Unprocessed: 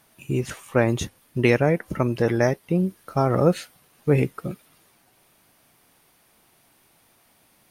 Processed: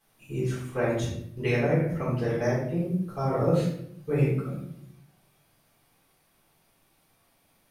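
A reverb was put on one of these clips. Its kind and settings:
rectangular room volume 140 cubic metres, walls mixed, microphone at 3.8 metres
level −18 dB

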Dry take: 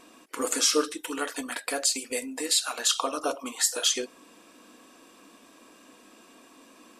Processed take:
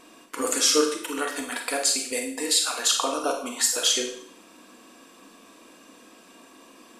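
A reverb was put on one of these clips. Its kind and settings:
four-comb reverb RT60 0.57 s, combs from 33 ms, DRR 3.5 dB
level +1.5 dB

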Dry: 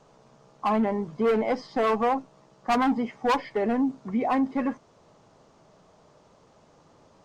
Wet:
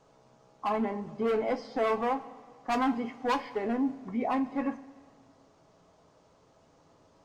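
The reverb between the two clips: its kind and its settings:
coupled-rooms reverb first 0.21 s, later 1.8 s, from −18 dB, DRR 6 dB
level −5.5 dB

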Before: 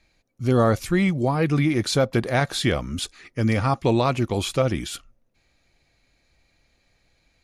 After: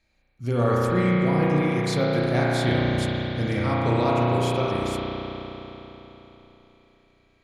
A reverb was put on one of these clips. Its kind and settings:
spring reverb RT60 3.8 s, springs 33 ms, chirp 40 ms, DRR −6 dB
level −7.5 dB

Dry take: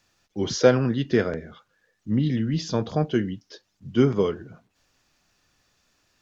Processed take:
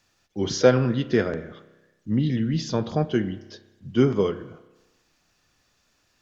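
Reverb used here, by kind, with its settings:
spring reverb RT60 1.1 s, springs 31 ms, chirp 35 ms, DRR 13.5 dB

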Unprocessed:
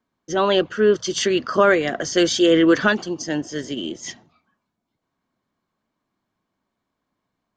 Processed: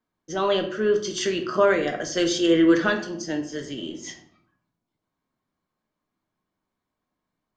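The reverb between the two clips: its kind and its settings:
rectangular room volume 83 cubic metres, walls mixed, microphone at 0.47 metres
level −6 dB

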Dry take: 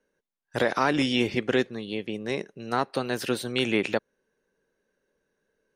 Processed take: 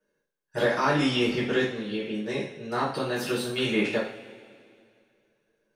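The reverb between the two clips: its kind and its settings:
coupled-rooms reverb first 0.46 s, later 2.3 s, from −18 dB, DRR −8.5 dB
level −9 dB

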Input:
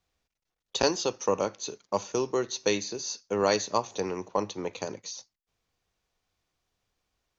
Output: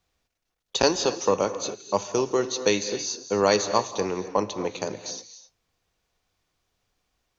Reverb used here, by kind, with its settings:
reverb whose tail is shaped and stops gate 290 ms rising, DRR 11 dB
level +4 dB

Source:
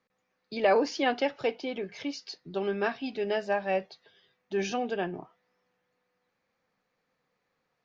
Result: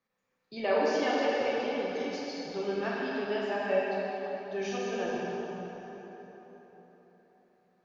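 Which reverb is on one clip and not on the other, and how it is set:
dense smooth reverb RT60 4.3 s, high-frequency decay 0.65×, DRR −6 dB
level −7.5 dB

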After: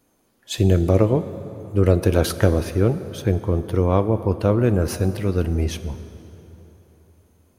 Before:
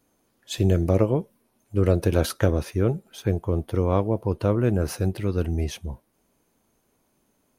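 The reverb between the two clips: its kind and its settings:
dense smooth reverb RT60 3.7 s, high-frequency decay 0.65×, DRR 11.5 dB
level +3.5 dB

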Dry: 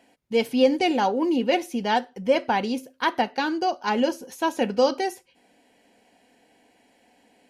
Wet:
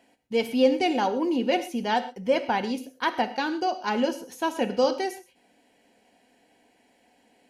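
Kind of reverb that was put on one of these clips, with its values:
reverb whose tail is shaped and stops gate 150 ms flat, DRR 11.5 dB
level −2.5 dB

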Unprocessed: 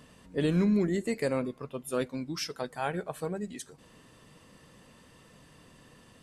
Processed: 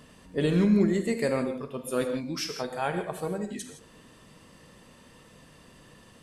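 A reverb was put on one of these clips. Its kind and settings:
reverb whose tail is shaped and stops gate 190 ms flat, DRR 6 dB
level +2 dB

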